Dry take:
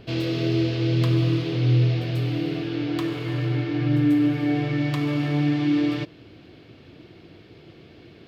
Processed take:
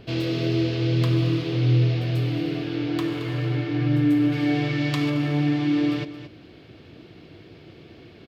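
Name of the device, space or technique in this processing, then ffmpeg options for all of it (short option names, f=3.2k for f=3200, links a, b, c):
ducked delay: -filter_complex "[0:a]asplit=3[a][b][c];[b]adelay=222,volume=-5dB[d];[c]apad=whole_len=374566[e];[d][e]sidechaincompress=threshold=-30dB:ratio=8:attack=16:release=927[f];[a][f]amix=inputs=2:normalize=0,asettb=1/sr,asplit=3[g][h][i];[g]atrim=end=4.324[j];[h]atrim=start=4.32:end=5.1,asetpts=PTS-STARTPTS,afade=t=in:d=0.004:c=qsin,afade=t=out:st=0.776:d=0.004:c=qsin,equalizer=f=5.1k:t=o:w=2.5:g=6[k];[i]atrim=start=5.096[l];[j][k]acrossfade=d=0.004:c1=hsin:c2=qsin[m];[m][l]acrossfade=d=0.004:c1=qsin:c2=hsin"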